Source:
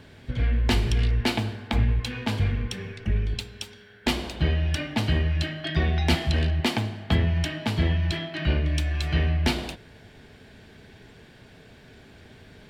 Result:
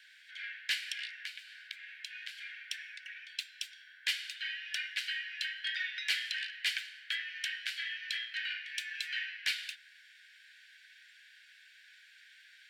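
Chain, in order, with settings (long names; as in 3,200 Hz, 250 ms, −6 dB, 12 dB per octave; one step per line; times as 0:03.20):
Butterworth high-pass 1,500 Hz 96 dB per octave
spectral tilt −1.5 dB per octave
0:01.22–0:02.64: downward compressor 20 to 1, threshold −40 dBFS, peak gain reduction 15 dB
soft clipping −20 dBFS, distortion −23 dB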